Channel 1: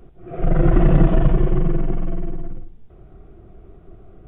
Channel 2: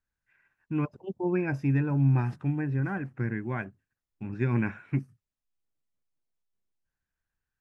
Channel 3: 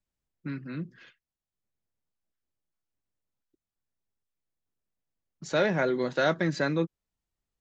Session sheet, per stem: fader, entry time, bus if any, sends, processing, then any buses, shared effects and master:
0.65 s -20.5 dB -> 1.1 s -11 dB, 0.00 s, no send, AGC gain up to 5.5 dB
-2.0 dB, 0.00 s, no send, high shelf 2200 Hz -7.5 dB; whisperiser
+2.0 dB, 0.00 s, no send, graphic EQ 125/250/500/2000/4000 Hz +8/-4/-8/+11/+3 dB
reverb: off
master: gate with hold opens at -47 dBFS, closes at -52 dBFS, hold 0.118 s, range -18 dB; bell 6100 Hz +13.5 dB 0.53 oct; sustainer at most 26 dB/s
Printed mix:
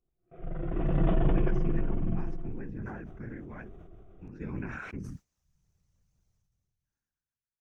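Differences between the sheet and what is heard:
stem 1: missing AGC gain up to 5.5 dB; stem 2 -2.0 dB -> -12.0 dB; stem 3: muted

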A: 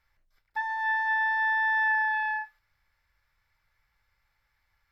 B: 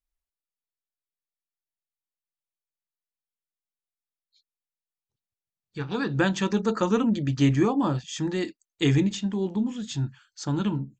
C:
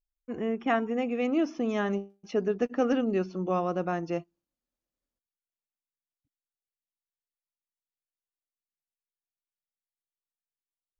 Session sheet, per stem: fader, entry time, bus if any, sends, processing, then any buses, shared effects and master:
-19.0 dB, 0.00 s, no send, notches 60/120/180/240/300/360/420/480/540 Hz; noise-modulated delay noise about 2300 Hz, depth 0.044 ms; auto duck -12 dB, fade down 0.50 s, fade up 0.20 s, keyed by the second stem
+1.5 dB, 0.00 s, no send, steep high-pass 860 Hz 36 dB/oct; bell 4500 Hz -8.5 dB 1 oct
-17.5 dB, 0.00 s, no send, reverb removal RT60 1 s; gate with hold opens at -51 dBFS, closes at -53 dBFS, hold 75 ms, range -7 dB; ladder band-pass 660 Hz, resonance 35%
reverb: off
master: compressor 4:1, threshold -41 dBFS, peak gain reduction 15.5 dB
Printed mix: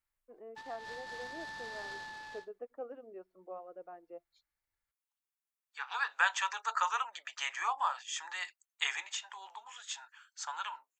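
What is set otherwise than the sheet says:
stem C -17.5 dB -> -6.0 dB; master: missing compressor 4:1, threshold -41 dBFS, peak gain reduction 15.5 dB

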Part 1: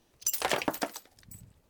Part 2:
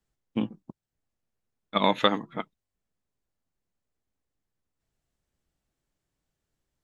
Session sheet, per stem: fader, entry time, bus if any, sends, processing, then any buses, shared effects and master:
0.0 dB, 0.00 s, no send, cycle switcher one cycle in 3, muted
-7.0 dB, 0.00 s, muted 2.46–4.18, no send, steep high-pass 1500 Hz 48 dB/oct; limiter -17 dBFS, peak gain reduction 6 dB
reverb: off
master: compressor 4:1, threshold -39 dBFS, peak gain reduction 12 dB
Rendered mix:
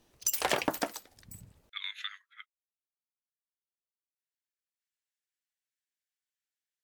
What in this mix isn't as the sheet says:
stem 1: missing cycle switcher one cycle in 3, muted; master: missing compressor 4:1, threshold -39 dBFS, peak gain reduction 12 dB

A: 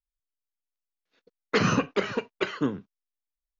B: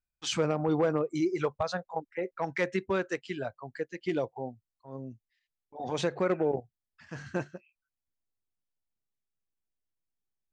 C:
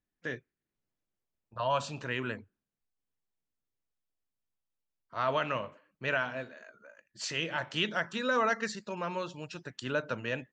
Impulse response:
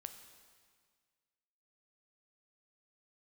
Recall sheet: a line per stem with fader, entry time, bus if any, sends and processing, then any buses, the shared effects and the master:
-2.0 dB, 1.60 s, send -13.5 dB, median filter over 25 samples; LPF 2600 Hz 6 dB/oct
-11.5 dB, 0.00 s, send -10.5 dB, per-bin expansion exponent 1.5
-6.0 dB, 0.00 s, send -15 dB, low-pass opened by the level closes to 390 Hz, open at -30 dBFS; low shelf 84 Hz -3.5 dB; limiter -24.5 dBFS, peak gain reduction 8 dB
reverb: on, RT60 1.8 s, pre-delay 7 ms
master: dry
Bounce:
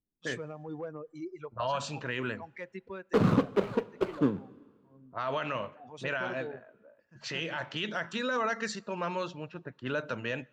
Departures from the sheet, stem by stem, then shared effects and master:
stem A: send -13.5 dB -> -4 dB; stem B: send -10.5 dB -> -17 dB; stem C -6.0 dB -> +1.5 dB

